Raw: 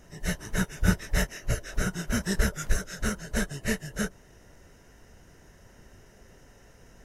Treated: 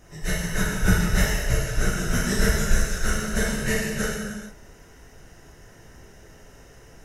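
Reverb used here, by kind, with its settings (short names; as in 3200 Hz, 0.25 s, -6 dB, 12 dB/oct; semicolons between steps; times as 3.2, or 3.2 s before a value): non-linear reverb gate 0.48 s falling, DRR -5 dB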